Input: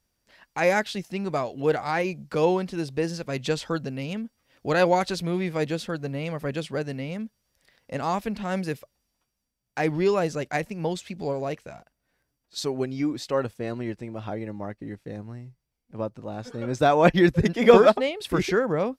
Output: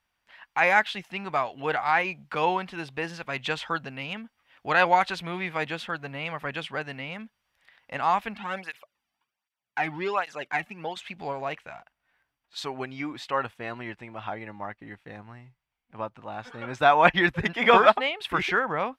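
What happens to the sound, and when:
8.34–10.97 s: cancelling through-zero flanger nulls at 1.3 Hz, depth 2.2 ms
whole clip: high-order bell 1.6 kHz +14 dB 2.6 oct; trim -8.5 dB

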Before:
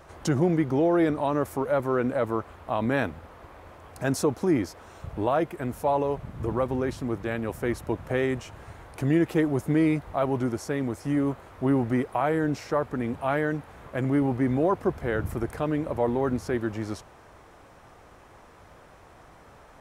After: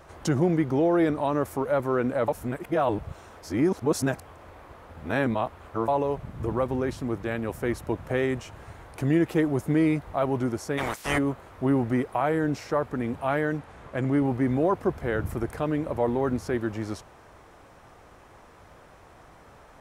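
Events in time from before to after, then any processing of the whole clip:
2.28–5.88 s: reverse
10.77–11.17 s: spectral peaks clipped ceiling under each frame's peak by 29 dB
13.59–14.25 s: low-pass 9.9 kHz

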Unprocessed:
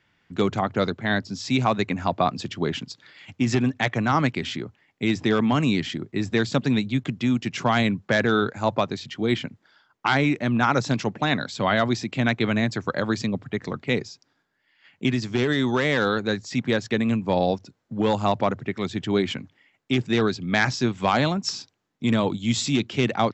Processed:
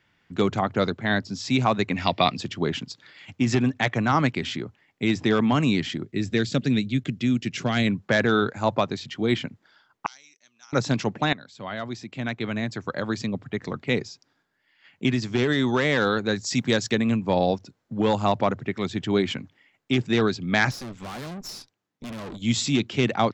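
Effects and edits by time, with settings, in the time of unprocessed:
1.95–2.36 s: time-frequency box 1.8–5.8 kHz +12 dB
6.05–7.87 s: peaking EQ 950 Hz -12.5 dB 0.87 oct
10.06–10.73 s: band-pass filter 5.9 kHz, Q 10
11.33–14.04 s: fade in, from -17.5 dB
16.36–16.95 s: tone controls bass +1 dB, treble +11 dB
20.71–22.42 s: valve stage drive 34 dB, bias 0.8

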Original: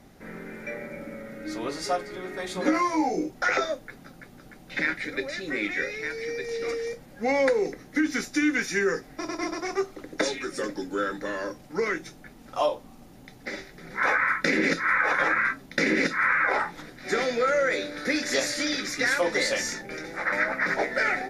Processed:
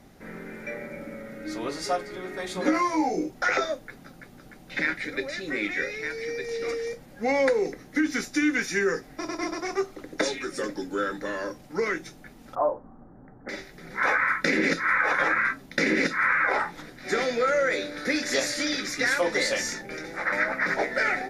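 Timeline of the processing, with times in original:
12.55–13.49 s: steep low-pass 1.6 kHz 48 dB/octave

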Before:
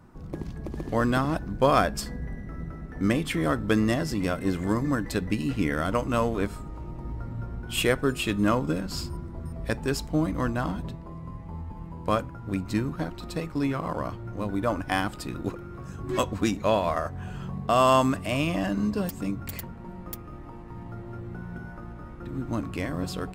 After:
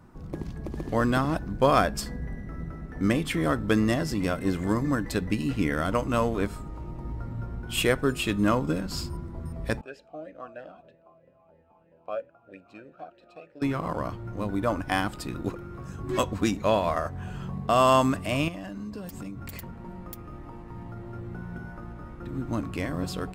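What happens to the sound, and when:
9.81–13.62 s: talking filter a-e 3.1 Hz
18.48–21.15 s: compression, threshold -34 dBFS

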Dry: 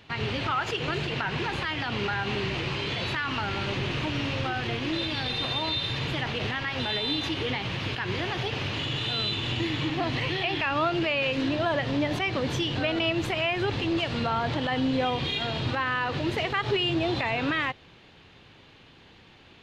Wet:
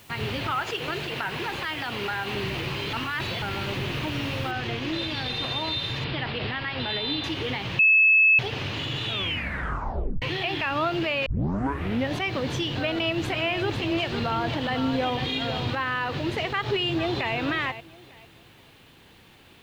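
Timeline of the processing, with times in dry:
0.62–2.34 s: tone controls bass -6 dB, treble 0 dB
2.93–3.42 s: reverse
4.51 s: noise floor step -54 dB -66 dB
6.04–7.24 s: steep low-pass 5.1 kHz 72 dB/octave
7.79–8.39 s: bleep 2.6 kHz -14 dBFS
9.04 s: tape stop 1.18 s
11.26 s: tape start 0.86 s
12.68–15.74 s: delay 500 ms -8 dB
16.47–17.35 s: echo throw 450 ms, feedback 25%, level -12 dB

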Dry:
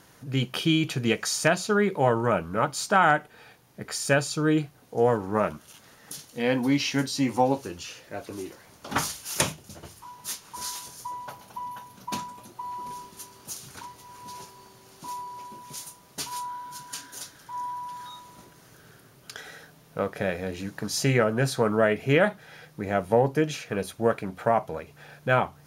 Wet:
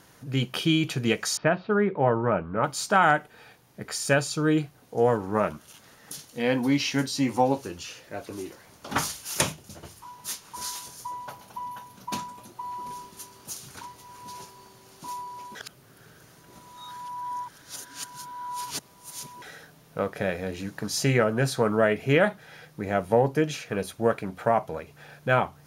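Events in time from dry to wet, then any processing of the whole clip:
1.37–2.64 s: Gaussian low-pass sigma 3.4 samples
15.55–19.42 s: reverse

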